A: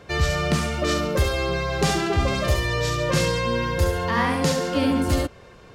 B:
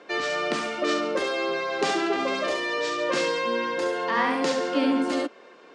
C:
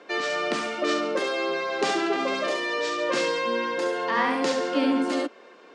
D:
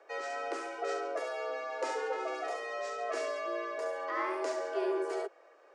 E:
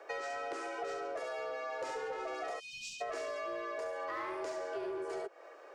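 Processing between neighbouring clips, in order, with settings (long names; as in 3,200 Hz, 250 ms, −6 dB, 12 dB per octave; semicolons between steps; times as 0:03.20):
elliptic band-pass filter 270–9,600 Hz, stop band 40 dB; high-frequency loss of the air 81 metres
high-pass filter 160 Hz 24 dB per octave
parametric band 3,400 Hz −11.5 dB 1.1 octaves; frequency shifter +110 Hz; level −9 dB
in parallel at −2 dB: hard clipping −33 dBFS, distortion −12 dB; on the sum: time-frequency box erased 0:02.59–0:03.01, 250–2,400 Hz; downward compressor 12 to 1, threshold −38 dBFS, peak gain reduction 13 dB; level +1.5 dB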